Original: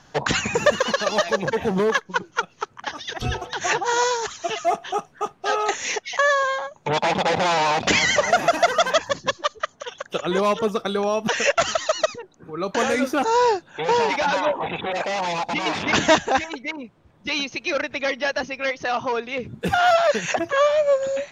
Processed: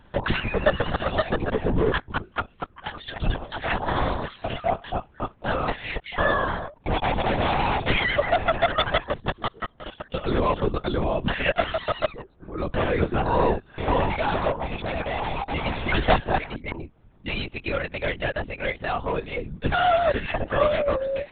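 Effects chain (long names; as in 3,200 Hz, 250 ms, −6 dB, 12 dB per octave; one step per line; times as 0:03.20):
low-shelf EQ 280 Hz +8 dB
linear-prediction vocoder at 8 kHz whisper
level −4 dB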